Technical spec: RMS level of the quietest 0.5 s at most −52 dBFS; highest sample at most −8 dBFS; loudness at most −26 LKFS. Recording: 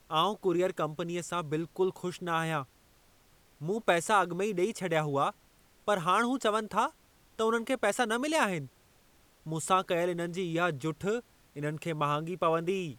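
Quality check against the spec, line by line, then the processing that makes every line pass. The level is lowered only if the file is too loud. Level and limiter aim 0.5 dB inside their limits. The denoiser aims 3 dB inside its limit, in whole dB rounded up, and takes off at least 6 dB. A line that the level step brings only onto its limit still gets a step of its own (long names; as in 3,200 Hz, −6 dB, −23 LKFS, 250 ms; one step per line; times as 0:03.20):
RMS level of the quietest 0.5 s −63 dBFS: in spec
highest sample −11.5 dBFS: in spec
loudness −30.5 LKFS: in spec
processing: no processing needed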